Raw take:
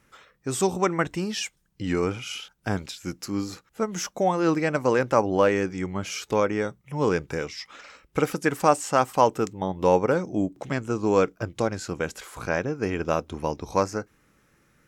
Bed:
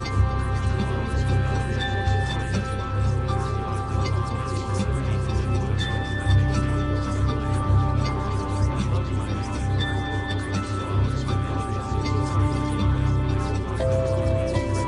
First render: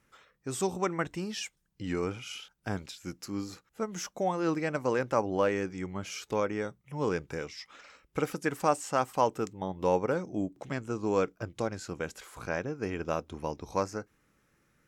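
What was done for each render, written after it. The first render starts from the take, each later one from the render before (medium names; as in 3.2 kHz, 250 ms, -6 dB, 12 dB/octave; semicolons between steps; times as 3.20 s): trim -7 dB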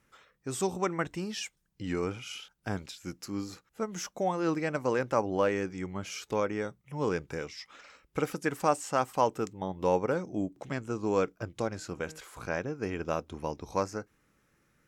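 11.68–12.20 s: de-hum 156.9 Hz, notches 18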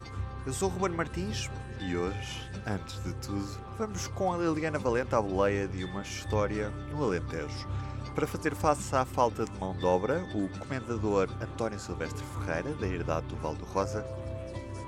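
add bed -15.5 dB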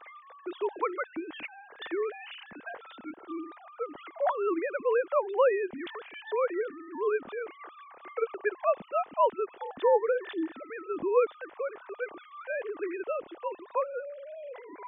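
formants replaced by sine waves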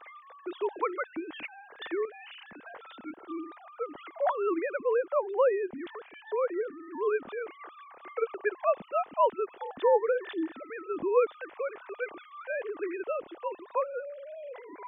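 2.05–2.75 s: compression 2.5:1, threshold -45 dBFS; 4.78–6.83 s: treble shelf 2.2 kHz -11.5 dB; 11.34–12.22 s: peaking EQ 2.4 kHz +4.5 dB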